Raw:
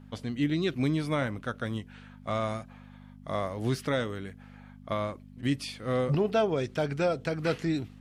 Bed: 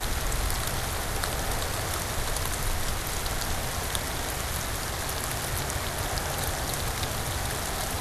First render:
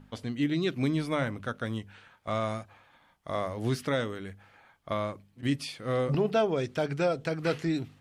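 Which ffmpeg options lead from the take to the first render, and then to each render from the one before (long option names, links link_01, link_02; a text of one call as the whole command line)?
ffmpeg -i in.wav -af "bandreject=frequency=50:width_type=h:width=4,bandreject=frequency=100:width_type=h:width=4,bandreject=frequency=150:width_type=h:width=4,bandreject=frequency=200:width_type=h:width=4,bandreject=frequency=250:width_type=h:width=4" out.wav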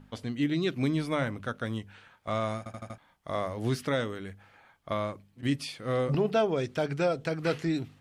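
ffmpeg -i in.wav -filter_complex "[0:a]asplit=6[link_01][link_02][link_03][link_04][link_05][link_06];[link_01]atrim=end=2.662[link_07];[link_02]atrim=start=2.578:end=2.662[link_08];[link_03]atrim=start=2.578:end=2.662[link_09];[link_04]atrim=start=2.578:end=2.662[link_10];[link_05]atrim=start=2.578:end=2.662[link_11];[link_06]atrim=start=2.978[link_12];[link_07][link_08]acrossfade=duration=0.004:curve1=hsin:curve2=hsin[link_13];[link_13][link_09]acrossfade=duration=0.004:curve1=hsin:curve2=hsin[link_14];[link_14][link_10]acrossfade=duration=0.004:curve1=hsin:curve2=hsin[link_15];[link_15][link_11]acrossfade=duration=0.004:curve1=hsin:curve2=hsin[link_16];[link_16][link_12]acrossfade=duration=0.004:curve1=hsin:curve2=hsin" out.wav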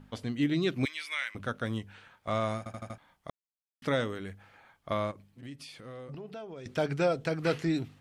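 ffmpeg -i in.wav -filter_complex "[0:a]asettb=1/sr,asplit=3[link_01][link_02][link_03];[link_01]atrim=end=0.854[link_04];[link_02]atrim=start=0.85:end=1.35,asetpts=PTS-STARTPTS,afade=type=in:duration=0.004:curve=qsin,afade=type=out:start_time=0.496:duration=0.004:curve=qsin,highpass=frequency=2200:width_type=q:width=2.3[link_05];[link_03]atrim=start=1.346[link_06];[link_04][link_05]acrossfade=duration=0.004:curve1=hsin:curve2=qsin[link_07];[link_07][link_06]acrossfade=duration=0.004:curve1=qsin:curve2=hsin,asettb=1/sr,asplit=3[link_08][link_09][link_10];[link_08]atrim=end=5.114[link_11];[link_09]atrim=start=5.11:end=6.66,asetpts=PTS-STARTPTS,afade=type=in:duration=0.004:curve=qsin,afade=type=out:start_time=1.546:duration=0.004:curve=qsin,acompressor=threshold=-46dB:ratio=3:attack=3.2:release=140:knee=1:detection=peak[link_12];[link_10]atrim=start=6.656[link_13];[link_11][link_12]acrossfade=duration=0.004:curve1=hsin:curve2=qsin[link_14];[link_14][link_13]acrossfade=duration=0.004:curve1=qsin:curve2=hsin,asplit=3[link_15][link_16][link_17];[link_15]atrim=end=3.3,asetpts=PTS-STARTPTS,afade=type=out:start_time=3.296:duration=0.004:curve=hsin[link_18];[link_16]atrim=start=3.3:end=3.82,asetpts=PTS-STARTPTS,volume=0[link_19];[link_17]atrim=start=3.82,asetpts=PTS-STARTPTS,afade=type=in:duration=0.004:curve=hsin[link_20];[link_18][link_19][link_20]concat=n=3:v=0:a=1" out.wav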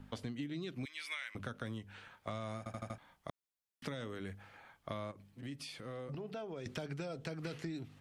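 ffmpeg -i in.wav -filter_complex "[0:a]acrossover=split=250|2800[link_01][link_02][link_03];[link_02]alimiter=level_in=3dB:limit=-24dB:level=0:latency=1,volume=-3dB[link_04];[link_01][link_04][link_03]amix=inputs=3:normalize=0,acompressor=threshold=-38dB:ratio=12" out.wav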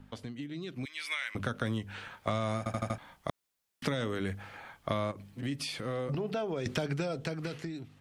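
ffmpeg -i in.wav -af "dynaudnorm=framelen=240:gausssize=9:maxgain=10dB" out.wav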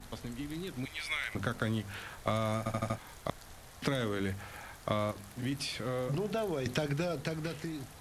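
ffmpeg -i in.wav -i bed.wav -filter_complex "[1:a]volume=-22dB[link_01];[0:a][link_01]amix=inputs=2:normalize=0" out.wav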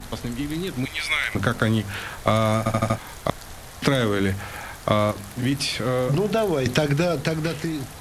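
ffmpeg -i in.wav -af "volume=12dB" out.wav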